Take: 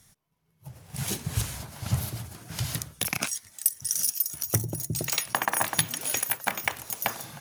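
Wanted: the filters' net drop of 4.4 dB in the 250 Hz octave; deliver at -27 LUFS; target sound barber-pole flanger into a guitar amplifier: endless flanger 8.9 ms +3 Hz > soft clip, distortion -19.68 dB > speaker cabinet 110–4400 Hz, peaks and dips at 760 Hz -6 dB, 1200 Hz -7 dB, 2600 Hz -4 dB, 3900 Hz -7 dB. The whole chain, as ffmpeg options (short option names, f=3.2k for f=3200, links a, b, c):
-filter_complex "[0:a]equalizer=f=250:t=o:g=-6.5,asplit=2[a][b];[b]adelay=8.9,afreqshift=3[c];[a][c]amix=inputs=2:normalize=1,asoftclip=threshold=-16.5dB,highpass=110,equalizer=f=760:t=q:w=4:g=-6,equalizer=f=1.2k:t=q:w=4:g=-7,equalizer=f=2.6k:t=q:w=4:g=-4,equalizer=f=3.9k:t=q:w=4:g=-7,lowpass=f=4.4k:w=0.5412,lowpass=f=4.4k:w=1.3066,volume=13.5dB"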